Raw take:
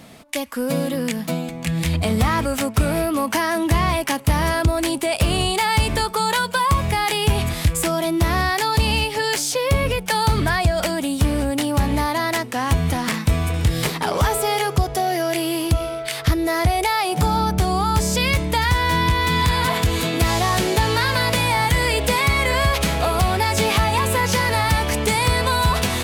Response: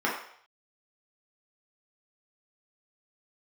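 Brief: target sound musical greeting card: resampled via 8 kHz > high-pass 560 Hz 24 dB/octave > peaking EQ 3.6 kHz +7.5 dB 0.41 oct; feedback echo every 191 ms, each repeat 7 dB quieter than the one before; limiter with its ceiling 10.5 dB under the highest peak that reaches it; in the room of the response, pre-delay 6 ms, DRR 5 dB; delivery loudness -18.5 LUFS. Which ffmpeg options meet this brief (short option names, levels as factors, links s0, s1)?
-filter_complex "[0:a]alimiter=limit=0.112:level=0:latency=1,aecho=1:1:191|382|573|764|955:0.447|0.201|0.0905|0.0407|0.0183,asplit=2[s0][s1];[1:a]atrim=start_sample=2205,adelay=6[s2];[s1][s2]afir=irnorm=-1:irlink=0,volume=0.133[s3];[s0][s3]amix=inputs=2:normalize=0,aresample=8000,aresample=44100,highpass=f=560:w=0.5412,highpass=f=560:w=1.3066,equalizer=f=3600:t=o:w=0.41:g=7.5,volume=2.51"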